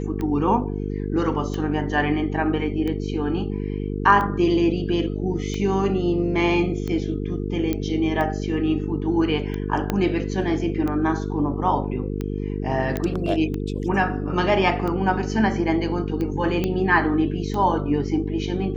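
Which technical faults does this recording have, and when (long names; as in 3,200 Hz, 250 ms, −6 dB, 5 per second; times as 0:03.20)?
mains buzz 50 Hz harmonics 9 −27 dBFS
scratch tick 45 rpm −17 dBFS
0:07.73: click −12 dBFS
0:09.90: click −9 dBFS
0:12.97: click −12 dBFS
0:16.64: click −11 dBFS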